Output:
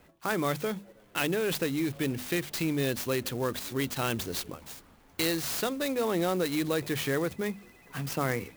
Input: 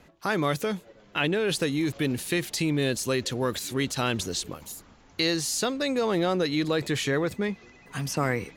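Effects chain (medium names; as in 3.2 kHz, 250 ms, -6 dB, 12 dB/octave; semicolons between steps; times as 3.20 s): hum notches 50/100/150/200/250 Hz; sampling jitter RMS 0.035 ms; trim -3 dB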